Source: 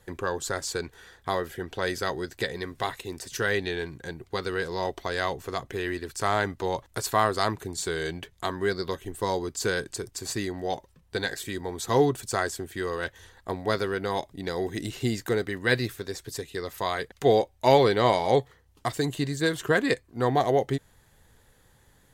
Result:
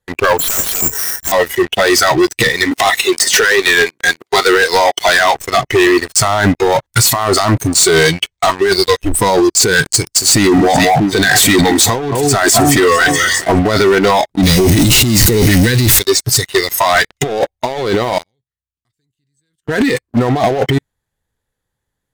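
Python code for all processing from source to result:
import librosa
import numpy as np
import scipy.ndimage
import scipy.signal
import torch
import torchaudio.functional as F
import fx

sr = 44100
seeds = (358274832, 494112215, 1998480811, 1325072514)

y = fx.chain(x, sr, fx.overflow_wrap(gain_db=22.5),
    fx.resample_bad(factor=6, down='filtered', up='zero_stuff'), at=(0.39, 1.32))
y = fx.chain(y, sr, fx.highpass(hz=360.0, slope=12),
    fx.clip_hard(threshold_db=-19.5),
    fx.band_squash(depth_pct=70), at=(2.71, 5.35))
y = fx.chain(y, sr, fx.cvsd(bps=64000),
    fx.brickwall_lowpass(high_hz=9300.0),
    fx.peak_eq(hz=240.0, db=-7.5, octaves=0.74), at=(7.99, 9.0))
y = fx.chain(y, sr, fx.highpass(hz=53.0, slope=12),
    fx.echo_alternate(ms=212, hz=1300.0, feedback_pct=65, wet_db=-11),
    fx.sustainer(db_per_s=32.0), at=(10.23, 13.59))
y = fx.chain(y, sr, fx.zero_step(step_db=-26.0),
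    fx.peak_eq(hz=1000.0, db=-10.0, octaves=2.8), at=(14.43, 15.99))
y = fx.chain(y, sr, fx.tone_stack(knobs='6-0-2'),
    fx.level_steps(step_db=13), at=(18.18, 19.69))
y = fx.noise_reduce_blind(y, sr, reduce_db=18)
y = fx.over_compress(y, sr, threshold_db=-33.0, ratio=-1.0)
y = fx.leveller(y, sr, passes=5)
y = y * librosa.db_to_amplitude(6.5)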